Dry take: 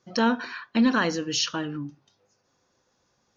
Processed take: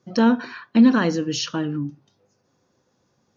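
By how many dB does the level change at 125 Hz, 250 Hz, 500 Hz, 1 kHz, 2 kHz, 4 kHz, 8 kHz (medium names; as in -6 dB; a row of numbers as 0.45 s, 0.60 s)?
+7.5 dB, +7.0 dB, +4.0 dB, +1.0 dB, -0.5 dB, -1.5 dB, no reading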